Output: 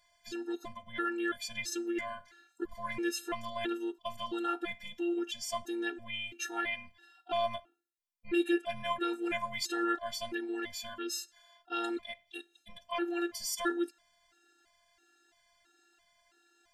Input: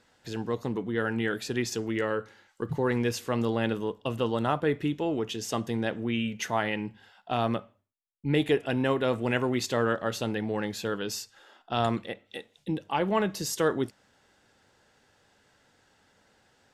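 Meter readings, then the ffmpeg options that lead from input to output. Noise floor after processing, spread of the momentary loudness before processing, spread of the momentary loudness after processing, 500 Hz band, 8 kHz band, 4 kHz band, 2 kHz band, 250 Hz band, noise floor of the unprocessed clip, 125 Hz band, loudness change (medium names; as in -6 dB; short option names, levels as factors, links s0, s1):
-72 dBFS, 8 LU, 10 LU, -9.0 dB, -2.5 dB, -3.0 dB, -4.0 dB, -6.5 dB, -67 dBFS, -23.5 dB, -6.0 dB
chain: -af "tiltshelf=f=970:g=-3,afftfilt=real='hypot(re,im)*cos(PI*b)':imag='0':win_size=512:overlap=0.75,afftfilt=real='re*gt(sin(2*PI*1.5*pts/sr)*(1-2*mod(floor(b*sr/1024/240),2)),0)':imag='im*gt(sin(2*PI*1.5*pts/sr)*(1-2*mod(floor(b*sr/1024/240),2)),0)':win_size=1024:overlap=0.75,volume=1.19"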